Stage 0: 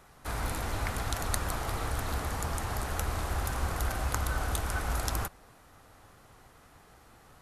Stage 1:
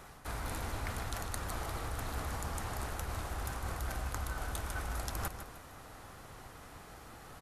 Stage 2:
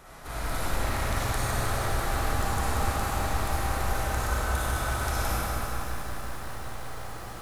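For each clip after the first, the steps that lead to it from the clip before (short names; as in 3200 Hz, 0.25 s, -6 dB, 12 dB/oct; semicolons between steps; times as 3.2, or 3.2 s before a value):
reverse; compressor 10:1, threshold -40 dBFS, peak gain reduction 16 dB; reverse; feedback echo 0.153 s, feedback 39%, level -10 dB; gain +5 dB
digital reverb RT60 2.6 s, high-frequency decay 0.9×, pre-delay 15 ms, DRR -9 dB; lo-fi delay 0.186 s, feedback 80%, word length 8-bit, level -8 dB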